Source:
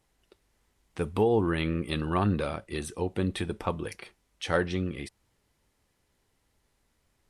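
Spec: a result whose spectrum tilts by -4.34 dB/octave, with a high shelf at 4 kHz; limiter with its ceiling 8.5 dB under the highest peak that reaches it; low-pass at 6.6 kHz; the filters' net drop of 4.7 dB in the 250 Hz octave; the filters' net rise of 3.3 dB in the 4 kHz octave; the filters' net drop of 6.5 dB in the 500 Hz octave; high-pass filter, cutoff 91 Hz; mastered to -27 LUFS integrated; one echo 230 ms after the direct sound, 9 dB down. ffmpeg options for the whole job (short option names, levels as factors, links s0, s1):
-af "highpass=91,lowpass=6600,equalizer=f=250:t=o:g=-4.5,equalizer=f=500:t=o:g=-6.5,highshelf=f=4000:g=-5.5,equalizer=f=4000:t=o:g=7.5,alimiter=limit=0.0944:level=0:latency=1,aecho=1:1:230:0.355,volume=2.51"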